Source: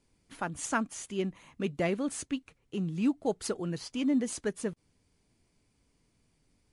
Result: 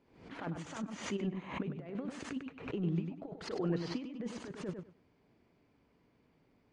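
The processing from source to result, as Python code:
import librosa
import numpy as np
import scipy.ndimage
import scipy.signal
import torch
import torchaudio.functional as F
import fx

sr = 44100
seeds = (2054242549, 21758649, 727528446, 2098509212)

y = fx.highpass(x, sr, hz=350.0, slope=6)
y = fx.over_compress(y, sr, threshold_db=-39.0, ratio=-0.5)
y = fx.spacing_loss(y, sr, db_at_10k=39)
y = fx.echo_feedback(y, sr, ms=99, feedback_pct=19, wet_db=-6.0)
y = fx.pre_swell(y, sr, db_per_s=94.0)
y = y * librosa.db_to_amplitude(4.0)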